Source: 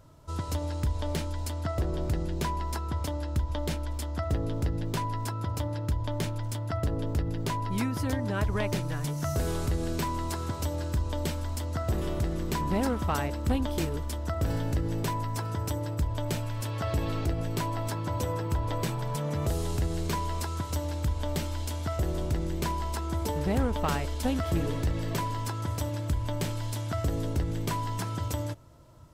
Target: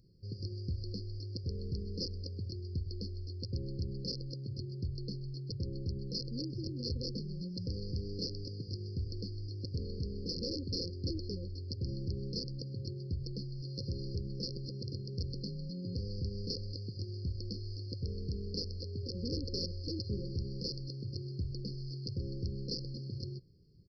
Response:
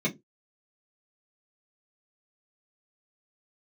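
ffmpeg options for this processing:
-af "lowshelf=f=630:t=q:w=3:g=-8,asetrate=53802,aresample=44100,aresample=11025,aeval=exprs='(mod(16.8*val(0)+1,2)-1)/16.8':c=same,aresample=44100,afftfilt=real='re*(1-between(b*sr/4096,550,4200))':imag='im*(1-between(b*sr/4096,550,4200))':win_size=4096:overlap=0.75"

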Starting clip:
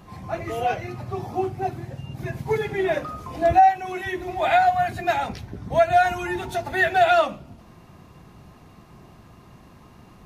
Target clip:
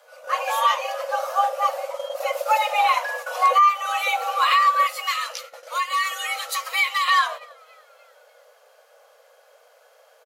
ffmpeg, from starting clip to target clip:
-filter_complex "[0:a]highshelf=f=3500:g=10,asplit=5[s0][s1][s2][s3][s4];[s1]adelay=299,afreqshift=84,volume=0.0631[s5];[s2]adelay=598,afreqshift=168,volume=0.0347[s6];[s3]adelay=897,afreqshift=252,volume=0.0191[s7];[s4]adelay=1196,afreqshift=336,volume=0.0105[s8];[s0][s5][s6][s7][s8]amix=inputs=5:normalize=0,alimiter=limit=0.211:level=0:latency=1:release=256,afreqshift=430,agate=range=0.251:threshold=0.0178:ratio=16:detection=peak,asettb=1/sr,asplit=3[s9][s10][s11];[s9]atrim=end=4.874[s12];[s10]atrim=start=4.87:end=7.08,asetpts=PTS-STARTPTS,afade=t=in:d=0.004:c=qsin,afade=t=out:st=2.206:d=0.004:c=qsin,equalizer=f=650:w=0.79:g=-13.5[s13];[s11]atrim=start=7.076[s14];[s12][s13]acrossfade=d=0.004:c1=hsin:c2=qsin[s15];[s15][s14]acrossfade=d=0.004:c1=qsin:c2=hsin,volume=1.68"

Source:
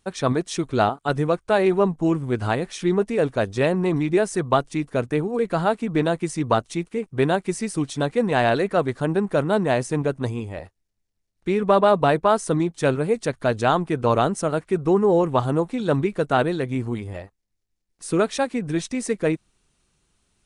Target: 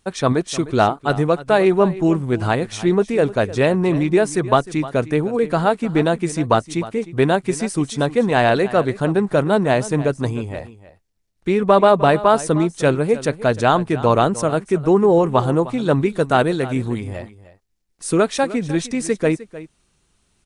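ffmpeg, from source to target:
-filter_complex "[0:a]aecho=1:1:306:0.15,asettb=1/sr,asplit=3[s0][s1][s2];[s0]atrim=end=15.944[s3];[s1]atrim=start=15.94:end=18.14,asetpts=PTS-STARTPTS,afade=t=in:d=0.004:c=qsin,afade=t=out:st=2.196:d=0.004:c=qsin,adynamicequalizer=threshold=0.00794:dfrequency=5100:dqfactor=0.7:tfrequency=5100:tqfactor=0.7:attack=5:release=100:ratio=0.375:range=2.5:mode=boostabove:tftype=highshelf[s4];[s2]atrim=start=18.136[s5];[s3][s4]acrossfade=d=0.004:c1=hsin:c2=qsin[s6];[s6][s5]acrossfade=d=0.004:c1=qsin:c2=hsin,volume=1.58"

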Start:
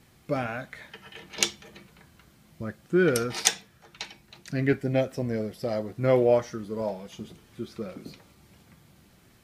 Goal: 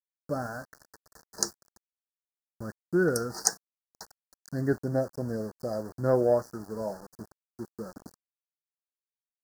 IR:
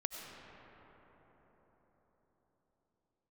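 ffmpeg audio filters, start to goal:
-af "aeval=exprs='0.891*(cos(1*acos(clip(val(0)/0.891,-1,1)))-cos(1*PI/2))+0.0316*(cos(7*acos(clip(val(0)/0.891,-1,1)))-cos(7*PI/2))':c=same,aeval=exprs='val(0)*gte(abs(val(0)),0.00944)':c=same,asuperstop=centerf=2800:order=12:qfactor=0.98,volume=0.891"

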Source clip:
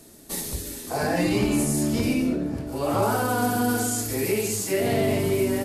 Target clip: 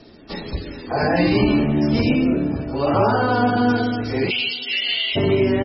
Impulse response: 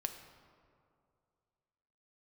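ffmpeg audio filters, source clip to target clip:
-filter_complex "[0:a]asplit=3[s0][s1][s2];[s0]afade=t=out:st=4.29:d=0.02[s3];[s1]highpass=f=3000:t=q:w=6.8,afade=t=in:st=4.29:d=0.02,afade=t=out:st=5.15:d=0.02[s4];[s2]afade=t=in:st=5.15:d=0.02[s5];[s3][s4][s5]amix=inputs=3:normalize=0,aecho=1:1:226|452|678|904|1130:0.1|0.058|0.0336|0.0195|0.0113,volume=2" -ar 24000 -c:a libmp3lame -b:a 16k

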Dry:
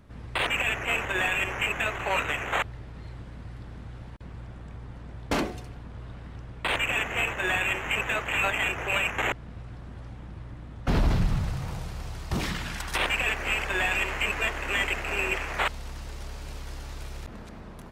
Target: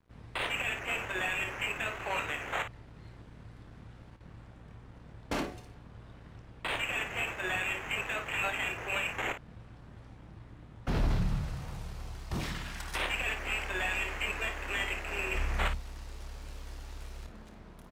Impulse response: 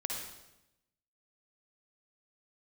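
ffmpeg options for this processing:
-filter_complex "[0:a]asettb=1/sr,asplit=3[s0][s1][s2];[s0]atrim=end=15.344[s3];[s1]atrim=start=15.34:end=15.75,asetpts=PTS-STARTPTS,afade=t=in:d=0.004:c=qsin,afade=t=out:st=0.406:d=0.004:c=qsin,bass=f=250:g=11,treble=f=4000:g=2[s4];[s2]atrim=start=15.746[s5];[s3][s4]acrossfade=d=0.004:c1=hsin:c2=qsin[s6];[s6][s5]acrossfade=d=0.004:c1=qsin:c2=hsin,aeval=exprs='sgn(val(0))*max(abs(val(0))-0.00237,0)':c=same,aecho=1:1:27|55:0.316|0.316,volume=0.447"

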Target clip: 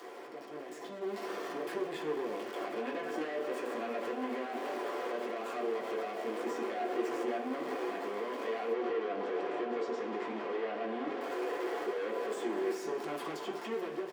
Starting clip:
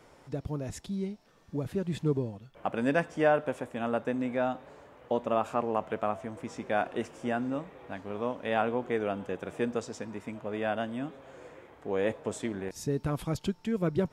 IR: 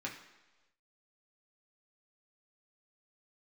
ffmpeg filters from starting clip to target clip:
-filter_complex "[0:a]aeval=exprs='val(0)+0.5*0.0188*sgn(val(0))':c=same,tremolo=f=200:d=0.519,acrossover=split=470|1500[s0][s1][s2];[s0]acompressor=threshold=0.0251:ratio=4[s3];[s1]acompressor=threshold=0.0141:ratio=4[s4];[s2]acompressor=threshold=0.00158:ratio=4[s5];[s3][s4][s5]amix=inputs=3:normalize=0,volume=53.1,asoftclip=hard,volume=0.0188,highpass=f=340:w=0.5412,highpass=f=340:w=1.3066,alimiter=level_in=3.98:limit=0.0631:level=0:latency=1:release=56,volume=0.251,asettb=1/sr,asplit=3[s6][s7][s8];[s6]atrim=end=8.734[s9];[s7]atrim=start=8.73:end=11.21,asetpts=PTS-STARTPTS,afade=t=in:d=0.004:c=qsin,afade=t=out:st=2.476:d=0.004:c=qsin,lowpass=4300[s10];[s8]atrim=start=11.206[s11];[s9][s10]acrossfade=d=0.004:c1=hsin:c2=qsin[s12];[s12][s11]acrossfade=d=0.004:c1=qsin:c2=hsin,asplit=2[s13][s14];[s14]adelay=215,lowpass=f=2000:p=1,volume=0.282,asplit=2[s15][s16];[s16]adelay=215,lowpass=f=2000:p=1,volume=0.28,asplit=2[s17][s18];[s18]adelay=215,lowpass=f=2000:p=1,volume=0.28[s19];[s13][s15][s17][s19]amix=inputs=4:normalize=0,dynaudnorm=f=170:g=11:m=2.82[s20];[1:a]atrim=start_sample=2205,asetrate=57330,aresample=44100[s21];[s20][s21]afir=irnorm=-1:irlink=0"

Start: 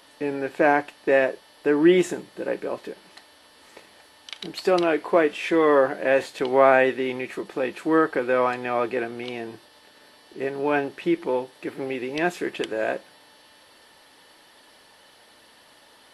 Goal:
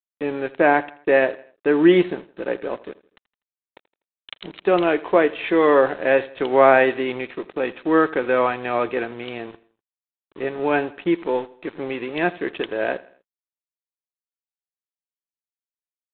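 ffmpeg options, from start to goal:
-af "aresample=8000,aeval=exprs='sgn(val(0))*max(abs(val(0))-0.00841,0)':c=same,aresample=44100,aecho=1:1:82|164|246:0.1|0.043|0.0185,volume=1.41"

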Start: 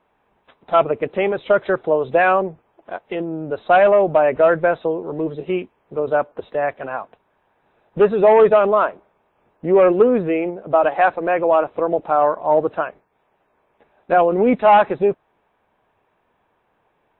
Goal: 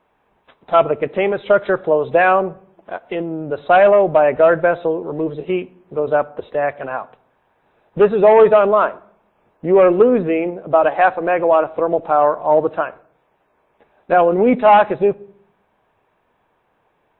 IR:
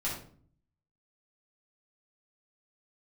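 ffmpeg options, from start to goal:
-filter_complex "[0:a]asplit=2[s0][s1];[1:a]atrim=start_sample=2205,asetrate=33516,aresample=44100[s2];[s1][s2]afir=irnorm=-1:irlink=0,volume=0.0562[s3];[s0][s3]amix=inputs=2:normalize=0,volume=1.19"

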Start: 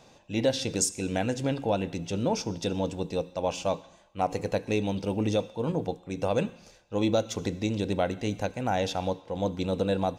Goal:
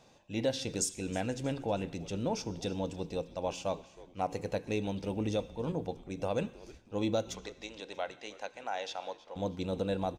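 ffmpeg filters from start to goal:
-filter_complex "[0:a]asettb=1/sr,asplit=3[s0][s1][s2];[s0]atrim=end=7.354[s3];[s1]atrim=start=7.35:end=9.36,asetpts=PTS-STARTPTS,afade=t=in:d=0.004:c=qsin,afade=t=out:st=2.006:d=0.004:c=qsin,highpass=670,lowpass=6600[s4];[s2]atrim=start=9.356[s5];[s3][s4]acrossfade=d=0.004:c1=hsin:c2=qsin[s6];[s6][s5]acrossfade=d=0.004:c1=qsin:c2=hsin,asplit=4[s7][s8][s9][s10];[s8]adelay=317,afreqshift=-140,volume=0.112[s11];[s9]adelay=634,afreqshift=-280,volume=0.0462[s12];[s10]adelay=951,afreqshift=-420,volume=0.0188[s13];[s7][s11][s12][s13]amix=inputs=4:normalize=0,volume=0.501"

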